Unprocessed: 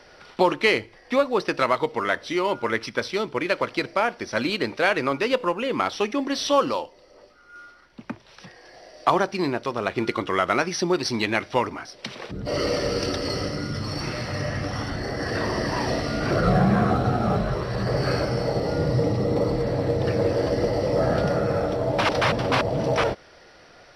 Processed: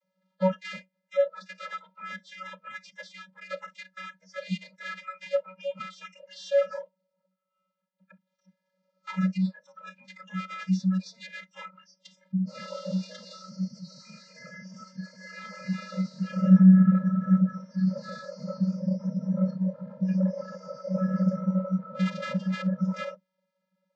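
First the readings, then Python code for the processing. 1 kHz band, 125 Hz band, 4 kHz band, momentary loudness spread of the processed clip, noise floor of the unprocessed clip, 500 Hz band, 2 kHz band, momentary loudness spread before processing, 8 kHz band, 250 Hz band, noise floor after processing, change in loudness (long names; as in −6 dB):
−15.5 dB, −1.5 dB, −15.0 dB, 20 LU, −51 dBFS, −10.5 dB, −13.5 dB, 8 LU, below −10 dB, +1.5 dB, −81 dBFS, −3.0 dB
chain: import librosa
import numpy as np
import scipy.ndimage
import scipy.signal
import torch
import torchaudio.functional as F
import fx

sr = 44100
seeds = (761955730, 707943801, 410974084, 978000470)

y = fx.lower_of_two(x, sr, delay_ms=5.7)
y = 10.0 ** (-19.5 / 20.0) * np.tanh(y / 10.0 ** (-19.5 / 20.0))
y = fx.vocoder(y, sr, bands=32, carrier='square', carrier_hz=187.0)
y = fx.noise_reduce_blind(y, sr, reduce_db=24)
y = y * librosa.db_to_amplitude(3.0)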